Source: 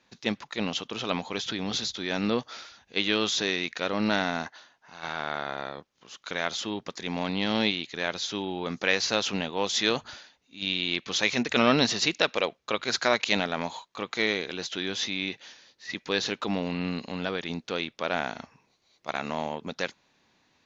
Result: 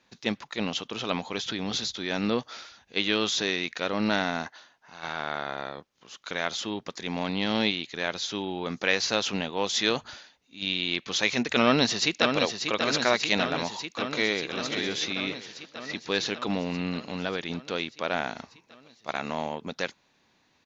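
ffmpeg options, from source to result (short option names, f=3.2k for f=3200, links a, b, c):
-filter_complex "[0:a]asplit=2[a][b];[b]afade=t=in:st=11.62:d=0.01,afade=t=out:st=12.41:d=0.01,aecho=0:1:590|1180|1770|2360|2950|3540|4130|4720|5310|5900|6490|7080:0.501187|0.37589|0.281918|0.211438|0.158579|0.118934|0.0892006|0.0669004|0.0501753|0.0376315|0.0282236|0.0211677[c];[a][c]amix=inputs=2:normalize=0,asplit=2[d][e];[e]afade=t=in:st=13.91:d=0.01,afade=t=out:st=14.59:d=0.01,aecho=0:1:530|1060|1590|2120:0.398107|0.119432|0.0358296|0.0107489[f];[d][f]amix=inputs=2:normalize=0"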